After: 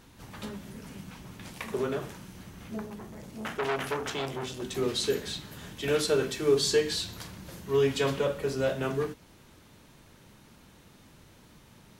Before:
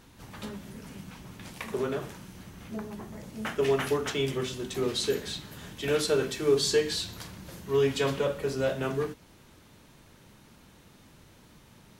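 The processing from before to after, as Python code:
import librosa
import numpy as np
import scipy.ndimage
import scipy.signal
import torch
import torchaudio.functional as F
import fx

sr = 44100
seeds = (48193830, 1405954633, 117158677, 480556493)

y = fx.transformer_sat(x, sr, knee_hz=1600.0, at=(2.86, 4.62))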